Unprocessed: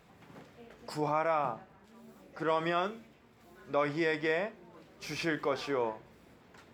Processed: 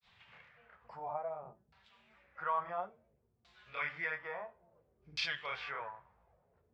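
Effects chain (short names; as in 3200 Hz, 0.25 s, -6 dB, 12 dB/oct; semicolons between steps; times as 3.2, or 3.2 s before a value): grains 0.153 s, spray 31 ms, pitch spread up and down by 0 st; LFO low-pass saw down 0.58 Hz 280–4400 Hz; passive tone stack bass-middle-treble 10-0-10; gain +4 dB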